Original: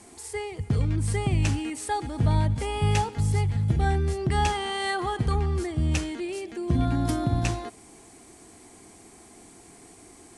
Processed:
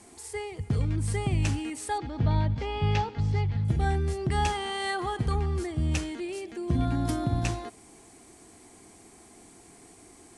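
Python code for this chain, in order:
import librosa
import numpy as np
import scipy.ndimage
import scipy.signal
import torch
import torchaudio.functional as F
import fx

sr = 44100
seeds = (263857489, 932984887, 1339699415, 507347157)

y = fx.lowpass(x, sr, hz=5000.0, slope=24, at=(1.98, 3.65))
y = y * 10.0 ** (-2.5 / 20.0)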